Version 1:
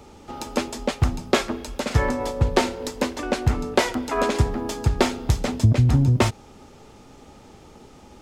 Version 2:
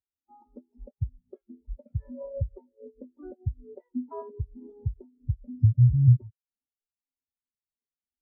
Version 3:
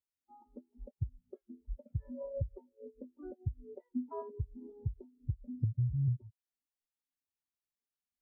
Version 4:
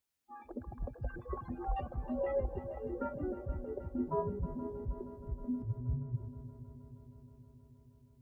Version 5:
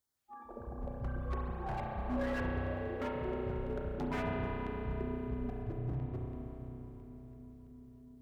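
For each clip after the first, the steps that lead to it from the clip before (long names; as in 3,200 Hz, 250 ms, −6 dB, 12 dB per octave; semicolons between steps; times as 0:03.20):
downward compressor 16 to 1, threshold −27 dBFS, peak gain reduction 16.5 dB; every bin expanded away from the loudest bin 4 to 1; level +2.5 dB
downward compressor 6 to 1, threshold −26 dBFS, peak gain reduction 13 dB; level −3.5 dB
compressor whose output falls as the input rises −36 dBFS, ratio −0.5; delay with pitch and tempo change per echo 103 ms, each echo +6 semitones, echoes 3, each echo −6 dB; echo machine with several playback heads 158 ms, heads second and third, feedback 68%, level −15 dB; level +3.5 dB
auto-filter notch square 3 Hz 280–2,500 Hz; wave folding −33.5 dBFS; convolution reverb RT60 3.9 s, pre-delay 32 ms, DRR −2.5 dB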